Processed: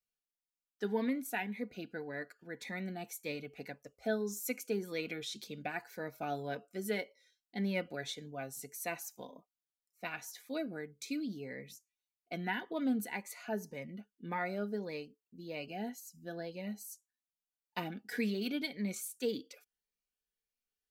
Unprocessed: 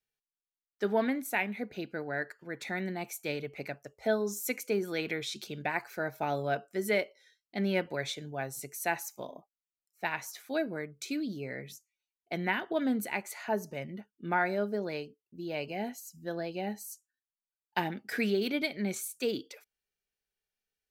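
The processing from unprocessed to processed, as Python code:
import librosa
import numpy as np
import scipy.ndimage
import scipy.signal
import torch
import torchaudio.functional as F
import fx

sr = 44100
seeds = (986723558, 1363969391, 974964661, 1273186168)

y = x + 0.35 * np.pad(x, (int(4.1 * sr / 1000.0), 0))[:len(x)]
y = fx.notch_cascade(y, sr, direction='rising', hz=1.8)
y = y * librosa.db_to_amplitude(-4.5)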